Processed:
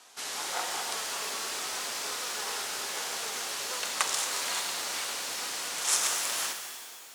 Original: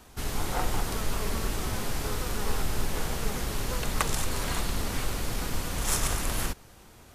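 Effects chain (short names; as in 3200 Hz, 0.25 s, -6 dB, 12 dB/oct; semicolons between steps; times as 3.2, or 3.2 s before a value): BPF 600–7600 Hz; high shelf 3300 Hz +10.5 dB; shimmer reverb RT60 2.2 s, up +12 st, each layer -8 dB, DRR 5 dB; gain -2.5 dB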